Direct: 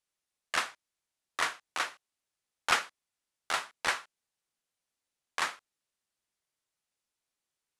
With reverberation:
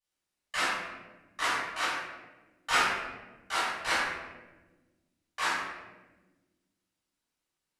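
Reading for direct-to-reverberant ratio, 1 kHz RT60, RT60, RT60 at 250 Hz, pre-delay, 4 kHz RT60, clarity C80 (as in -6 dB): -14.0 dB, 1.0 s, 1.2 s, 2.2 s, 3 ms, 0.75 s, 1.5 dB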